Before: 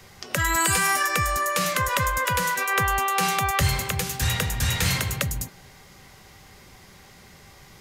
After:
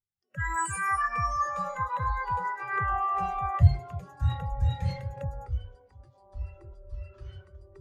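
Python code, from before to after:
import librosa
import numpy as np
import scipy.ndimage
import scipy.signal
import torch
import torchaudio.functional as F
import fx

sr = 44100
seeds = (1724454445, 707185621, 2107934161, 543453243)

y = fx.echo_pitch(x, sr, ms=388, semitones=-6, count=3, db_per_echo=-6.0)
y = fx.spectral_expand(y, sr, expansion=2.5)
y = y * 10.0 ** (-2.5 / 20.0)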